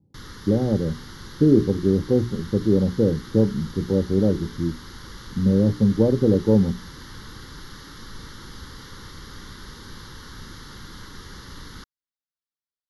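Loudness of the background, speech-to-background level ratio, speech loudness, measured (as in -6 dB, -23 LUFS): -41.0 LUFS, 19.5 dB, -21.5 LUFS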